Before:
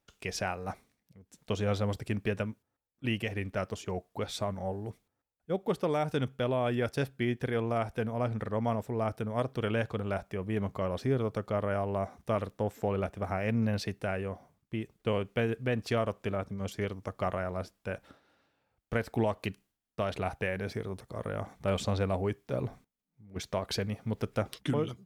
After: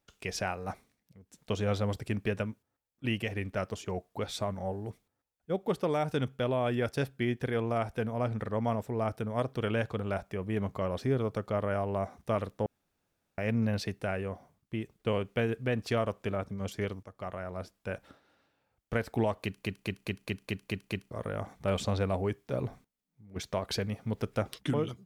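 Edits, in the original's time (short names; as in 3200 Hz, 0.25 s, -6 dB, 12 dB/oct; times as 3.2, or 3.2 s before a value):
12.66–13.38 room tone
17.03–17.93 fade in, from -13 dB
19.43 stutter in place 0.21 s, 8 plays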